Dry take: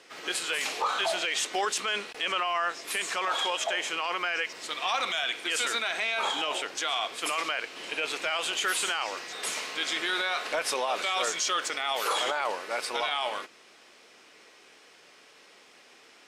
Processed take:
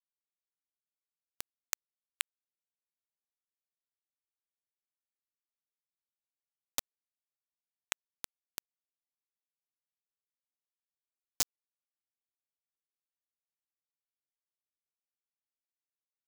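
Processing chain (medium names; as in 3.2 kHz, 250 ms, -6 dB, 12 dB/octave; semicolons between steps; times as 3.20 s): compression 3:1, threshold -48 dBFS, peak gain reduction 17 dB; fifteen-band graphic EQ 1 kHz -4 dB, 2.5 kHz +3 dB, 6.3 kHz +7 dB; bit crusher 5-bit; trim +14.5 dB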